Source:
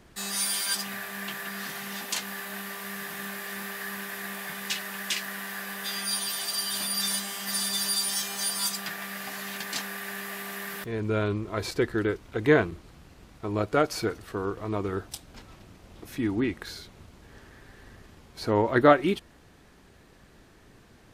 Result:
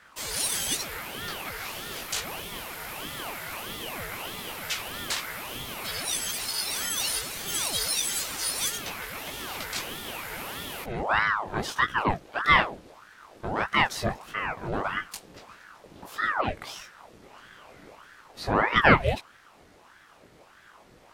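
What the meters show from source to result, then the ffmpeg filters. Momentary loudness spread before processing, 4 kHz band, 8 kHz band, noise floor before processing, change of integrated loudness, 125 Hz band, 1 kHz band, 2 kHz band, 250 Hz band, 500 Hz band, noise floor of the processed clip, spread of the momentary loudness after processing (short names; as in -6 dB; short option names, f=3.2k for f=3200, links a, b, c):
11 LU, +0.5 dB, +0.5 dB, -56 dBFS, +0.5 dB, -1.5 dB, +4.5 dB, +5.0 dB, -5.5 dB, -5.5 dB, -55 dBFS, 13 LU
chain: -af "flanger=delay=16.5:depth=3.5:speed=1.1,aeval=exprs='val(0)*sin(2*PI*930*n/s+930*0.75/1.6*sin(2*PI*1.6*n/s))':c=same,volume=6dB"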